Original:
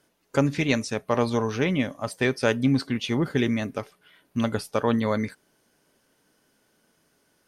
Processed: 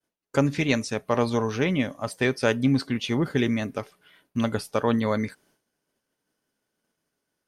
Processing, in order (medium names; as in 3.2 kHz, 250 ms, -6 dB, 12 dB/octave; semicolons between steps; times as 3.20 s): expander -57 dBFS